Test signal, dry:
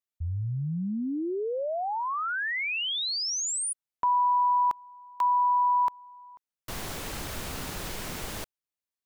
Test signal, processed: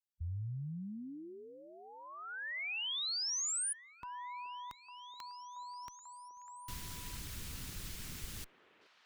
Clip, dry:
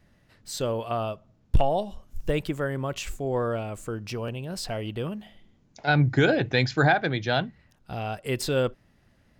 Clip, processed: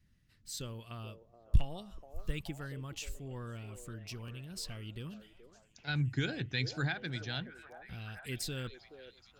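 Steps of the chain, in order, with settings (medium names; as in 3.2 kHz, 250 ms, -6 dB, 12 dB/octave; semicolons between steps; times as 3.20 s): amplifier tone stack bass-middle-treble 6-0-2; repeats whose band climbs or falls 426 ms, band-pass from 510 Hz, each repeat 0.7 oct, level -6 dB; harmonic-percussive split harmonic -4 dB; trim +8.5 dB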